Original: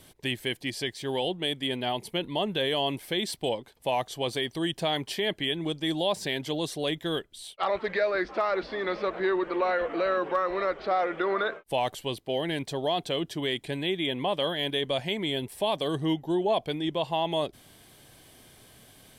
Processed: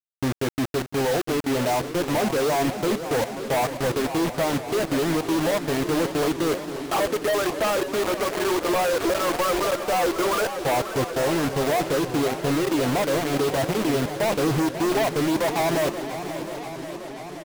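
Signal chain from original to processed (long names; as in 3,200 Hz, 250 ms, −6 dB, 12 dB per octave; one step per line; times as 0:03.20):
reverb reduction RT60 0.76 s
low-pass filter 1,200 Hz 24 dB per octave
notch comb filter 190 Hz
tempo change 1.1×
log-companded quantiser 2 bits
single-tap delay 699 ms −16 dB
feedback echo with a swinging delay time 534 ms, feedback 75%, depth 166 cents, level −11.5 dB
level +4 dB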